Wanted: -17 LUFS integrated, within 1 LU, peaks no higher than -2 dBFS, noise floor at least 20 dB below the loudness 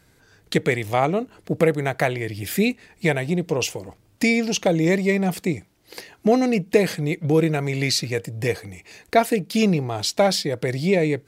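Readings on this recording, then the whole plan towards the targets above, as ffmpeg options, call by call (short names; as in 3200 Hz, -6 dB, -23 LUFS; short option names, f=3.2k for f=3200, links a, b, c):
loudness -22.0 LUFS; peak -3.5 dBFS; loudness target -17.0 LUFS
-> -af "volume=5dB,alimiter=limit=-2dB:level=0:latency=1"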